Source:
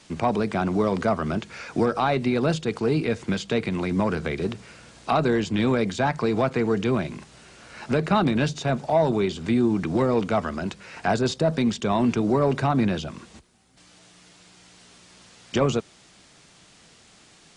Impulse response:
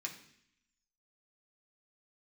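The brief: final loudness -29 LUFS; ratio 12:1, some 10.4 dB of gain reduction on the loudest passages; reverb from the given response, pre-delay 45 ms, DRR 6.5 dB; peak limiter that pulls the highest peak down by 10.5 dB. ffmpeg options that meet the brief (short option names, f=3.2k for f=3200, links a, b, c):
-filter_complex "[0:a]acompressor=threshold=-27dB:ratio=12,alimiter=level_in=0.5dB:limit=-24dB:level=0:latency=1,volume=-0.5dB,asplit=2[a][b];[1:a]atrim=start_sample=2205,adelay=45[c];[b][c]afir=irnorm=-1:irlink=0,volume=-6dB[d];[a][d]amix=inputs=2:normalize=0,volume=5dB"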